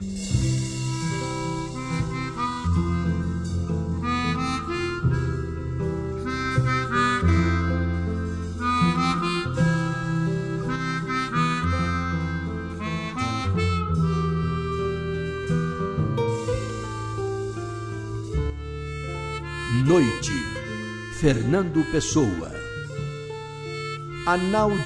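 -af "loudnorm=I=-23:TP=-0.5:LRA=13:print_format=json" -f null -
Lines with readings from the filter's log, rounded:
"input_i" : "-25.5",
"input_tp" : "-7.6",
"input_lra" : "3.2",
"input_thresh" : "-35.5",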